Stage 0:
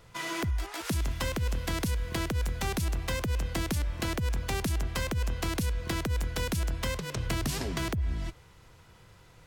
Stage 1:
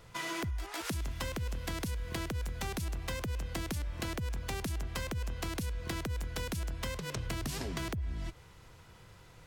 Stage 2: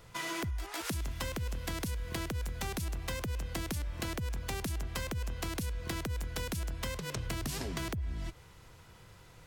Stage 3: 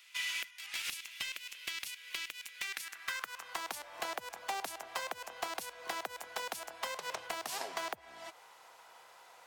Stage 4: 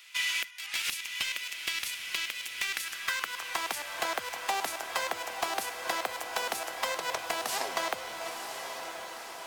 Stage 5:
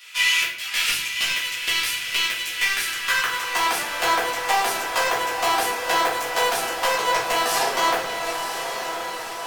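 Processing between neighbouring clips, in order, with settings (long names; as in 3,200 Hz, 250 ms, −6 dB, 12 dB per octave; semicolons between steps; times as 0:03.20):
downward compressor 3 to 1, threshold −35 dBFS, peak gain reduction 7 dB
high-shelf EQ 8,400 Hz +3.5 dB
high-pass filter sweep 2,500 Hz → 750 Hz, 0:02.51–0:03.82; slew-rate limiting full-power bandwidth 100 Hz
feedback delay with all-pass diffusion 983 ms, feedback 60%, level −7 dB; level +6.5 dB
rectangular room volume 83 cubic metres, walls mixed, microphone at 1.8 metres; level +2.5 dB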